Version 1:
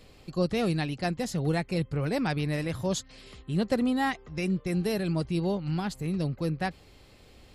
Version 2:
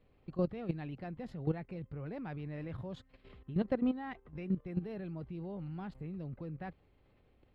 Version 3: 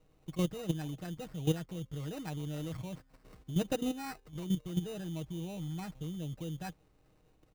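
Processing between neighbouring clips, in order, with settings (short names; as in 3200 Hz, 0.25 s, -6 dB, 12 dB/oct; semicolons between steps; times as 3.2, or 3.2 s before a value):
air absorption 490 m; level quantiser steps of 13 dB; gain -2.5 dB
comb 6.4 ms, depth 54%; sample-rate reducer 3300 Hz, jitter 0%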